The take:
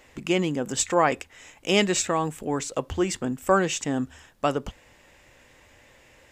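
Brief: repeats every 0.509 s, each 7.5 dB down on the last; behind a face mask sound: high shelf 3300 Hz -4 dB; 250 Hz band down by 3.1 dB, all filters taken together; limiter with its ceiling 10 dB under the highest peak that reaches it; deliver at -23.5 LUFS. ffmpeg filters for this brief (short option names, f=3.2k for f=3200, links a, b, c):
-af "equalizer=f=250:t=o:g=-4.5,alimiter=limit=-17.5dB:level=0:latency=1,highshelf=f=3.3k:g=-4,aecho=1:1:509|1018|1527|2036|2545:0.422|0.177|0.0744|0.0312|0.0131,volume=7dB"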